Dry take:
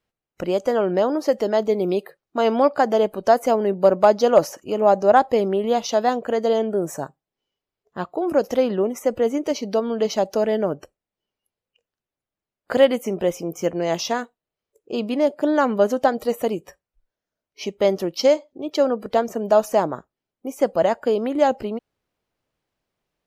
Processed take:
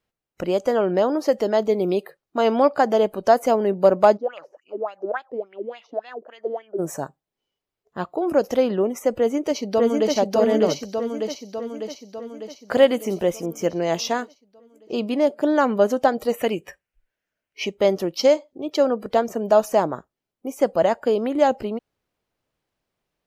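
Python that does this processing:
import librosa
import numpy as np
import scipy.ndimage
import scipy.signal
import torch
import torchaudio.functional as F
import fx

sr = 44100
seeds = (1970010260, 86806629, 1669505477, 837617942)

y = fx.filter_lfo_bandpass(x, sr, shape='sine', hz=3.5, low_hz=300.0, high_hz=2900.0, q=6.0, at=(4.16, 6.78), fade=0.02)
y = fx.echo_throw(y, sr, start_s=9.14, length_s=1.01, ms=600, feedback_pct=60, wet_db=-1.0)
y = fx.echo_wet_highpass(y, sr, ms=91, feedback_pct=40, hz=5500.0, wet_db=-11, at=(10.7, 13.46))
y = fx.band_shelf(y, sr, hz=2100.0, db=8.5, octaves=1.2, at=(16.34, 17.67))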